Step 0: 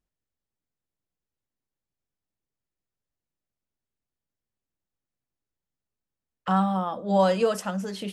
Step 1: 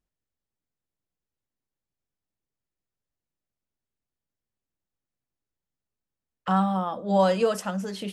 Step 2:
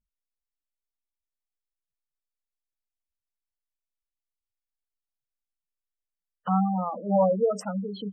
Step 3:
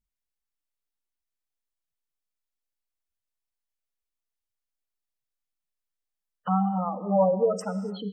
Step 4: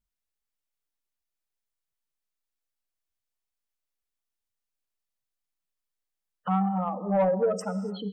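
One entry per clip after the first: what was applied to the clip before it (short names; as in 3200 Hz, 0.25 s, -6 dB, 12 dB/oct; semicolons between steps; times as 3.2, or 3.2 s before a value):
nothing audible
vibrato 0.4 Hz 11 cents; spectral gate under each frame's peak -10 dB strong
non-linear reverb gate 0.31 s flat, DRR 12 dB
soft clip -16 dBFS, distortion -19 dB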